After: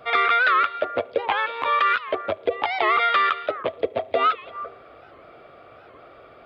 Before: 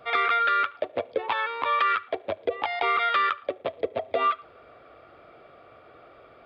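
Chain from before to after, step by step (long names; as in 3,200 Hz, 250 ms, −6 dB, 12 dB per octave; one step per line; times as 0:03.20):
0:01.40–0:02.08: transient designer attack −3 dB, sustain −8 dB
echo through a band-pass that steps 168 ms, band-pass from 3,300 Hz, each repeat −1.4 octaves, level −11 dB
wow of a warped record 78 rpm, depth 160 cents
level +4 dB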